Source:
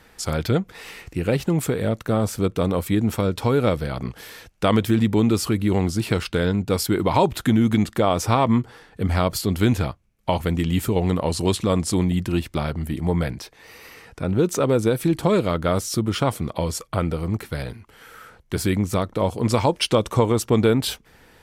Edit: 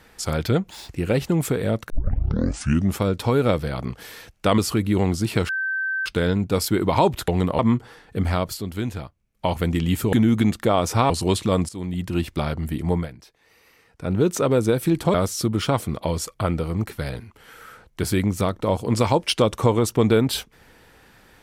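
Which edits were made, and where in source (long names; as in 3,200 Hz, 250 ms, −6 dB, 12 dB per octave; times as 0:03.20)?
0:00.69–0:01.07: play speed 191%
0:02.08: tape start 1.11 s
0:04.76–0:05.33: remove
0:06.24: insert tone 1,550 Hz −22 dBFS 0.57 s
0:07.46–0:08.43: swap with 0:10.97–0:11.28
0:09.03–0:10.42: duck −8.5 dB, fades 0.48 s
0:11.87–0:12.43: fade in, from −18.5 dB
0:13.12–0:14.28: duck −12.5 dB, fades 0.15 s
0:15.32–0:15.67: remove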